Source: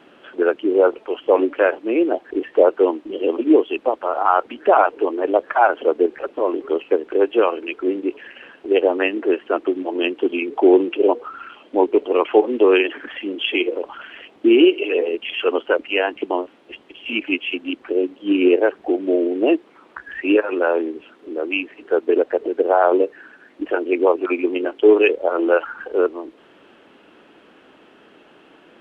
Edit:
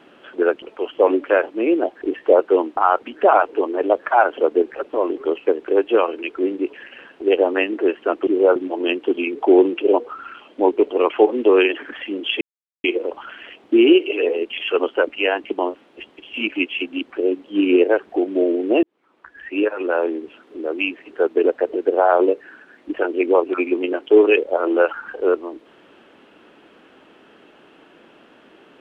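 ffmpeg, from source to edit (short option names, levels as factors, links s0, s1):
-filter_complex "[0:a]asplit=7[s0][s1][s2][s3][s4][s5][s6];[s0]atrim=end=0.622[s7];[s1]atrim=start=0.908:end=3.062[s8];[s2]atrim=start=4.208:end=9.712[s9];[s3]atrim=start=0.618:end=0.912[s10];[s4]atrim=start=9.708:end=13.56,asetpts=PTS-STARTPTS,afade=t=out:st=3.848:d=0.004:c=hsin,apad=pad_dur=0.43[s11];[s5]atrim=start=13.56:end=19.55,asetpts=PTS-STARTPTS,afade=t=in:d=0.004:c=hsin,afade=t=out:st=5.986:d=0.004:c=hsin[s12];[s6]atrim=start=19.55,asetpts=PTS-STARTPTS,afade=t=in:d=1.79:c=qsin[s13];[s7][s8]acrossfade=d=0.004:c1=hsin:c2=hsin[s14];[s14][s9]acrossfade=d=0.004:c1=hsin:c2=hsin[s15];[s15][s10]acrossfade=d=0.004:c1=hsin:c2=hsin[s16];[s11][s12][s13]concat=n=3:v=0:a=1[s17];[s16][s17]acrossfade=d=0.004:c1=hsin:c2=hsin"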